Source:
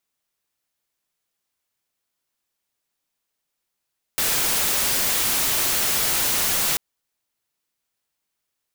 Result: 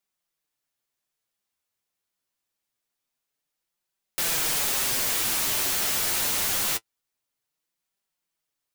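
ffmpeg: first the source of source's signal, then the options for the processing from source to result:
-f lavfi -i "anoisesrc=color=white:amplitude=0.146:duration=2.59:sample_rate=44100:seed=1"
-af "flanger=delay=5:depth=6.5:regen=37:speed=0.25:shape=triangular"

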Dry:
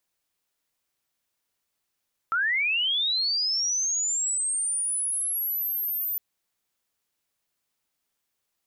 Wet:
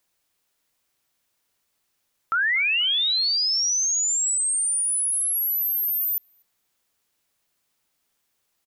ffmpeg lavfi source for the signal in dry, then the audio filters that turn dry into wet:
-f lavfi -i "aevalsrc='pow(10,(-21.5-4.5*t/3.86)/20)*sin(2*PI*(1300*t+12700*t*t/(2*3.86)))':duration=3.86:sample_rate=44100"
-filter_complex "[0:a]asplit=2[link_01][link_02];[link_02]alimiter=level_in=5.5dB:limit=-24dB:level=0:latency=1,volume=-5.5dB,volume=0dB[link_03];[link_01][link_03]amix=inputs=2:normalize=0,asplit=2[link_04][link_05];[link_05]adelay=242,lowpass=frequency=1800:poles=1,volume=-20dB,asplit=2[link_06][link_07];[link_07]adelay=242,lowpass=frequency=1800:poles=1,volume=0.51,asplit=2[link_08][link_09];[link_09]adelay=242,lowpass=frequency=1800:poles=1,volume=0.51,asplit=2[link_10][link_11];[link_11]adelay=242,lowpass=frequency=1800:poles=1,volume=0.51[link_12];[link_04][link_06][link_08][link_10][link_12]amix=inputs=5:normalize=0"

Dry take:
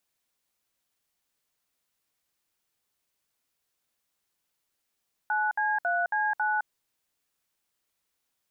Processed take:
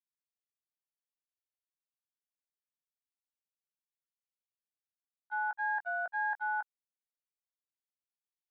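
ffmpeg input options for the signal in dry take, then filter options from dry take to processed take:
-f lavfi -i "aevalsrc='0.0473*clip(min(mod(t,0.274),0.212-mod(t,0.274))/0.002,0,1)*(eq(floor(t/0.274),0)*(sin(2*PI*852*mod(t,0.274))+sin(2*PI*1477*mod(t,0.274)))+eq(floor(t/0.274),1)*(sin(2*PI*852*mod(t,0.274))+sin(2*PI*1633*mod(t,0.274)))+eq(floor(t/0.274),2)*(sin(2*PI*697*mod(t,0.274))+sin(2*PI*1477*mod(t,0.274)))+eq(floor(t/0.274),3)*(sin(2*PI*852*mod(t,0.274))+sin(2*PI*1633*mod(t,0.274)))+eq(floor(t/0.274),4)*(sin(2*PI*852*mod(t,0.274))+sin(2*PI*1477*mod(t,0.274))))':duration=1.37:sample_rate=44100"
-filter_complex "[0:a]agate=range=-31dB:threshold=-26dB:ratio=16:detection=peak,lowshelf=frequency=410:gain=-9,asplit=2[link_01][link_02];[link_02]adelay=18,volume=-9.5dB[link_03];[link_01][link_03]amix=inputs=2:normalize=0"

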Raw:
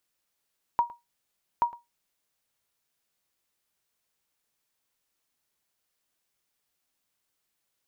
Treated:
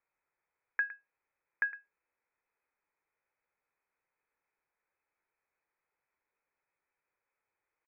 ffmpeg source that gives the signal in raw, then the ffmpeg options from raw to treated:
-f lavfi -i "aevalsrc='0.178*(sin(2*PI*950*mod(t,0.83))*exp(-6.91*mod(t,0.83)/0.19)+0.106*sin(2*PI*950*max(mod(t,0.83)-0.11,0))*exp(-6.91*max(mod(t,0.83)-0.11,0)/0.19))':duration=1.66:sample_rate=44100"
-filter_complex "[0:a]lowpass=frequency=2200:width_type=q:width=0.5098,lowpass=frequency=2200:width_type=q:width=0.6013,lowpass=frequency=2200:width_type=q:width=0.9,lowpass=frequency=2200:width_type=q:width=2.563,afreqshift=-2600,acrossover=split=1300[link_01][link_02];[link_01]aecho=1:1:2.2:0.36[link_03];[link_02]alimiter=level_in=0.5dB:limit=-24dB:level=0:latency=1:release=109,volume=-0.5dB[link_04];[link_03][link_04]amix=inputs=2:normalize=0"

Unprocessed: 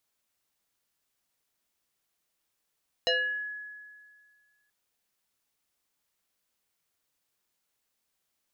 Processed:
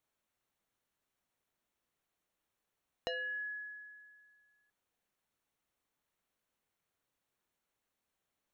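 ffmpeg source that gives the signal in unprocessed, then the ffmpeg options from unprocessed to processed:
-f lavfi -i "aevalsrc='0.0841*pow(10,-3*t/1.9)*sin(2*PI*1690*t+2.7*pow(10,-3*t/0.51)*sin(2*PI*0.7*1690*t))':duration=1.63:sample_rate=44100"
-af "highshelf=frequency=2800:gain=-10.5,bandreject=frequency=4900:width=8.1,acompressor=threshold=-37dB:ratio=5"

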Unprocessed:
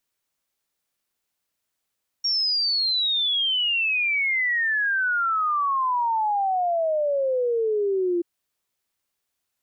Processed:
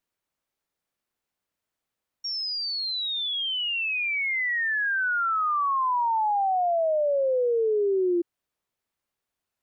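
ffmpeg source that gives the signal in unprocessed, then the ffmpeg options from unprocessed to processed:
-f lavfi -i "aevalsrc='0.1*clip(min(t,5.98-t)/0.01,0,1)*sin(2*PI*5600*5.98/log(340/5600)*(exp(log(340/5600)*t/5.98)-1))':duration=5.98:sample_rate=44100"
-af "highshelf=frequency=2600:gain=-9"

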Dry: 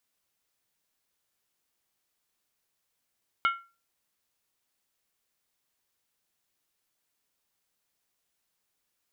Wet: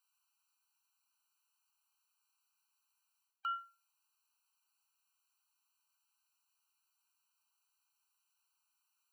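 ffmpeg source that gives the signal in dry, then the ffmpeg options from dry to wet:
-f lavfi -i "aevalsrc='0.112*pow(10,-3*t/0.32)*sin(2*PI*1370*t)+0.0562*pow(10,-3*t/0.253)*sin(2*PI*2183.8*t)+0.0282*pow(10,-3*t/0.219)*sin(2*PI*2926.3*t)+0.0141*pow(10,-3*t/0.211)*sin(2*PI*3145.5*t)+0.00708*pow(10,-3*t/0.196)*sin(2*PI*3634.6*t)':duration=0.63:sample_rate=44100"
-af "areverse,acompressor=threshold=-35dB:ratio=10,areverse,afftfilt=real='re*eq(mod(floor(b*sr/1024/780),2),1)':imag='im*eq(mod(floor(b*sr/1024/780),2),1)':win_size=1024:overlap=0.75"

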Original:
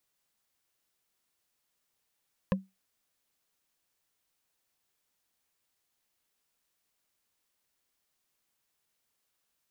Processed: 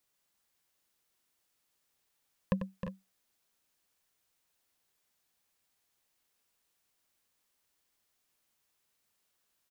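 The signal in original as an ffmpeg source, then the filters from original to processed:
-f lavfi -i "aevalsrc='0.0944*pow(10,-3*t/0.21)*sin(2*PI*191*t)+0.0668*pow(10,-3*t/0.062)*sin(2*PI*526.6*t)+0.0473*pow(10,-3*t/0.028)*sin(2*PI*1032.2*t)+0.0335*pow(10,-3*t/0.015)*sin(2*PI*1706.2*t)+0.0237*pow(10,-3*t/0.009)*sin(2*PI*2547.9*t)':duration=0.45:sample_rate=44100"
-filter_complex "[0:a]asplit=2[link_01][link_02];[link_02]aecho=0:1:94|312|346|358:0.355|0.355|0.251|0.224[link_03];[link_01][link_03]amix=inputs=2:normalize=0"

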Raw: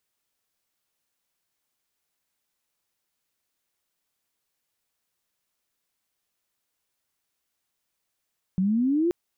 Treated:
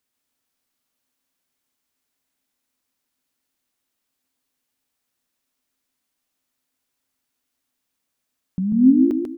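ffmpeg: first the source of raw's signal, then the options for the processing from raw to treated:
-f lavfi -i "aevalsrc='pow(10,(-20+0.5*t/0.53)/20)*sin(2*PI*180*0.53/log(360/180)*(exp(log(360/180)*t/0.53)-1))':duration=0.53:sample_rate=44100"
-filter_complex "[0:a]equalizer=frequency=260:width_type=o:width=0.22:gain=14,asplit=2[link_01][link_02];[link_02]aecho=0:1:142|284|426|568:0.631|0.202|0.0646|0.0207[link_03];[link_01][link_03]amix=inputs=2:normalize=0"

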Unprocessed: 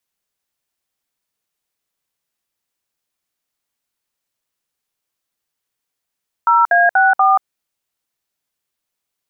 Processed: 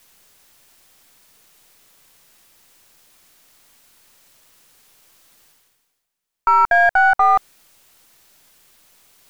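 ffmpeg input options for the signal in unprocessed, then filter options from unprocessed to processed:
-f lavfi -i "aevalsrc='0.266*clip(min(mod(t,0.241),0.182-mod(t,0.241))/0.002,0,1)*(eq(floor(t/0.241),0)*(sin(2*PI*941*mod(t,0.241))+sin(2*PI*1336*mod(t,0.241)))+eq(floor(t/0.241),1)*(sin(2*PI*697*mod(t,0.241))+sin(2*PI*1633*mod(t,0.241)))+eq(floor(t/0.241),2)*(sin(2*PI*770*mod(t,0.241))+sin(2*PI*1477*mod(t,0.241)))+eq(floor(t/0.241),3)*(sin(2*PI*770*mod(t,0.241))+sin(2*PI*1209*mod(t,0.241))))':duration=0.964:sample_rate=44100"
-af "aeval=exprs='if(lt(val(0),0),0.708*val(0),val(0))':channel_layout=same,areverse,acompressor=mode=upward:threshold=-32dB:ratio=2.5,areverse"

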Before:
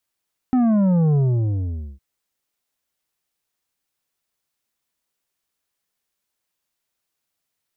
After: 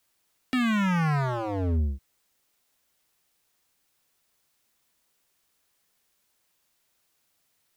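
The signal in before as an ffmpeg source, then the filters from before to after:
-f lavfi -i "aevalsrc='0.178*clip((1.46-t)/0.84,0,1)*tanh(2.51*sin(2*PI*260*1.46/log(65/260)*(exp(log(65/260)*t/1.46)-1)))/tanh(2.51)':duration=1.46:sample_rate=44100"
-filter_complex "[0:a]asplit=2[link_01][link_02];[link_02]acompressor=threshold=-29dB:ratio=5,volume=3dB[link_03];[link_01][link_03]amix=inputs=2:normalize=0,aeval=exprs='0.0841*(abs(mod(val(0)/0.0841+3,4)-2)-1)':channel_layout=same"

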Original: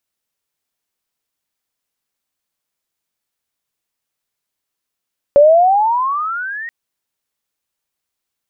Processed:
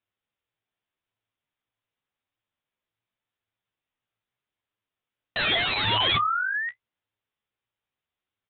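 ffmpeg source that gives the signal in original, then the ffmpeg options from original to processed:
-f lavfi -i "aevalsrc='pow(10,(-3.5-20.5*t/1.33)/20)*sin(2*PI*560*1.33/log(1900/560)*(exp(log(1900/560)*t/1.33)-1))':duration=1.33:sample_rate=44100"
-af "aresample=8000,aeval=exprs='(mod(6.31*val(0)+1,2)-1)/6.31':channel_layout=same,aresample=44100,flanger=delay=9.2:depth=9.6:regen=31:speed=0.84:shape=triangular,equalizer=frequency=110:width_type=o:width=0.25:gain=12.5"

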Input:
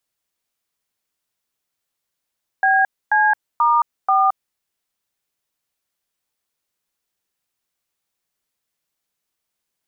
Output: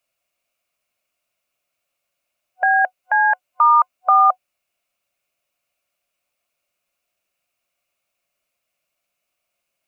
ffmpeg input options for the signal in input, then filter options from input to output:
-f lavfi -i "aevalsrc='0.178*clip(min(mod(t,0.485),0.22-mod(t,0.485))/0.002,0,1)*(eq(floor(t/0.485),0)*(sin(2*PI*770*mod(t,0.485))+sin(2*PI*1633*mod(t,0.485)))+eq(floor(t/0.485),1)*(sin(2*PI*852*mod(t,0.485))+sin(2*PI*1633*mod(t,0.485)))+eq(floor(t/0.485),2)*(sin(2*PI*941*mod(t,0.485))+sin(2*PI*1209*mod(t,0.485)))+eq(floor(t/0.485),3)*(sin(2*PI*770*mod(t,0.485))+sin(2*PI*1209*mod(t,0.485))))':duration=1.94:sample_rate=44100"
-af "superequalizer=8b=3.55:10b=1.78:12b=2.82"

